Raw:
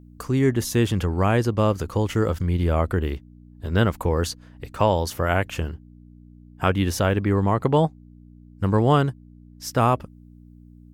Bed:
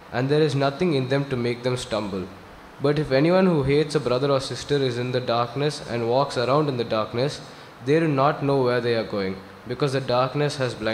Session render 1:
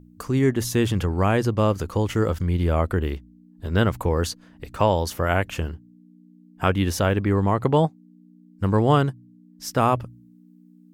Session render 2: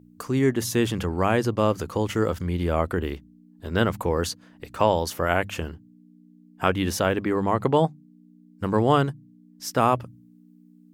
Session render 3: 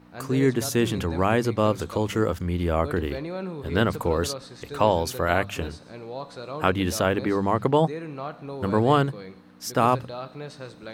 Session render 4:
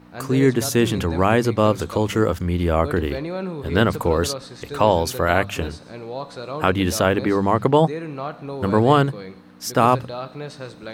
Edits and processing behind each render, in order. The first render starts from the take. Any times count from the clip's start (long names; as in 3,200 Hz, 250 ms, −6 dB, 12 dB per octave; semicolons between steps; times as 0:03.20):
hum removal 60 Hz, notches 2
high-pass filter 140 Hz 6 dB per octave; mains-hum notches 50/100/150/200 Hz
mix in bed −14.5 dB
level +4.5 dB; brickwall limiter −2 dBFS, peak gain reduction 2.5 dB